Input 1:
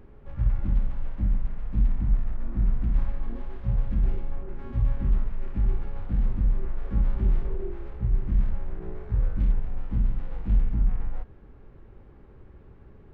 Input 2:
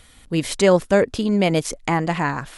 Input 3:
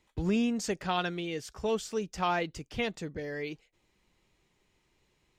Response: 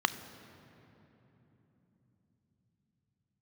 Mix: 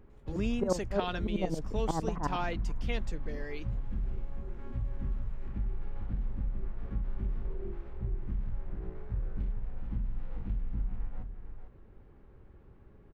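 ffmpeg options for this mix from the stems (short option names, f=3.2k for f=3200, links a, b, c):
-filter_complex "[0:a]acompressor=threshold=-23dB:ratio=5,volume=-6.5dB,asplit=2[a][b];[b]volume=-8dB[c];[1:a]lowpass=f=1.2k:w=0.5412,lowpass=f=1.2k:w=1.3066,dynaudnorm=f=320:g=3:m=11.5dB,aeval=exprs='val(0)*pow(10,-21*if(lt(mod(-11*n/s,1),2*abs(-11)/1000),1-mod(-11*n/s,1)/(2*abs(-11)/1000),(mod(-11*n/s,1)-2*abs(-11)/1000)/(1-2*abs(-11)/1000))/20)':c=same,volume=-12dB,asplit=3[d][e][f];[e]volume=-21.5dB[g];[2:a]adelay=100,volume=-5.5dB[h];[f]apad=whole_len=579100[i];[a][i]sidechaincompress=threshold=-36dB:ratio=8:attack=16:release=258[j];[c][g]amix=inputs=2:normalize=0,aecho=0:1:448:1[k];[j][d][h][k]amix=inputs=4:normalize=0"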